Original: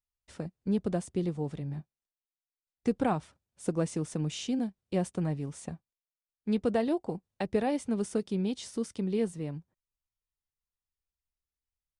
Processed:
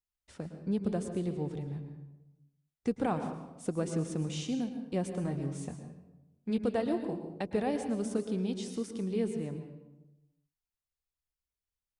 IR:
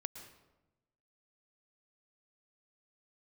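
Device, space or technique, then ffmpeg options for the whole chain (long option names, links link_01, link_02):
bathroom: -filter_complex "[1:a]atrim=start_sample=2205[link_01];[0:a][link_01]afir=irnorm=-1:irlink=0,asettb=1/sr,asplit=3[link_02][link_03][link_04];[link_02]atrim=end=5.234[link_05];[link_03]atrim=start=5.23:end=6.58,asetpts=PTS-STARTPTS,afade=type=in:duration=0.004:curve=qsin,afade=type=out:start_time=1.346:duration=0.004:curve=qsin,asplit=2[link_06][link_07];[link_07]adelay=22,volume=-6.5dB[link_08];[link_06][link_08]amix=inputs=2:normalize=0,atrim=end_sample=59535[link_09];[link_04]atrim=start=6.576[link_10];[link_05][link_09]acrossfade=duration=0.004:curve1=hsin:curve2=qsin[link_11];[link_11][link_10]acrossfade=duration=0.004:curve1=qsin:curve2=hsin"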